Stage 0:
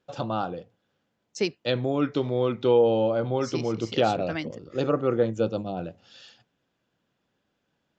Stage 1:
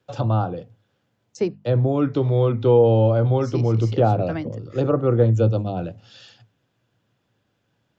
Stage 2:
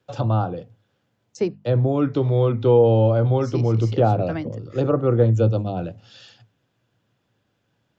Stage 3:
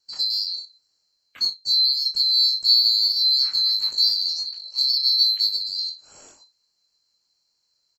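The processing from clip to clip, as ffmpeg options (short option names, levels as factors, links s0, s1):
-filter_complex "[0:a]equalizer=f=110:w=3:g=15,bandreject=f=50:t=h:w=6,bandreject=f=100:t=h:w=6,bandreject=f=150:t=h:w=6,bandreject=f=200:t=h:w=6,bandreject=f=250:t=h:w=6,acrossover=split=290|440|1300[s0][s1][s2][s3];[s3]acompressor=threshold=0.00501:ratio=10[s4];[s0][s1][s2][s4]amix=inputs=4:normalize=0,volume=1.58"
-af anull
-filter_complex "[0:a]afftfilt=real='real(if(lt(b,736),b+184*(1-2*mod(floor(b/184),2)),b),0)':imag='imag(if(lt(b,736),b+184*(1-2*mod(floor(b/184),2)),b),0)':win_size=2048:overlap=0.75,asplit=2[s0][s1];[s1]asoftclip=type=tanh:threshold=0.126,volume=0.282[s2];[s0][s2]amix=inputs=2:normalize=0,aecho=1:1:22|61:0.708|0.251,volume=0.562"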